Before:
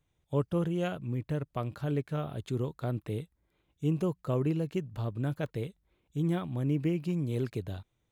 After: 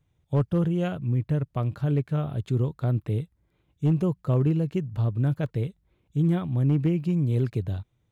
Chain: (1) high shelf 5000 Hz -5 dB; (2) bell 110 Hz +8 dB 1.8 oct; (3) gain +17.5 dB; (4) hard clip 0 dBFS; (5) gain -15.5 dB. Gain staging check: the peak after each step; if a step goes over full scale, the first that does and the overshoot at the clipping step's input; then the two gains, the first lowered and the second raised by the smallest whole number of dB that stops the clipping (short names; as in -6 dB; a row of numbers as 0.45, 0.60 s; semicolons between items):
-19.0, -14.0, +3.5, 0.0, -15.5 dBFS; step 3, 3.5 dB; step 3 +13.5 dB, step 5 -11.5 dB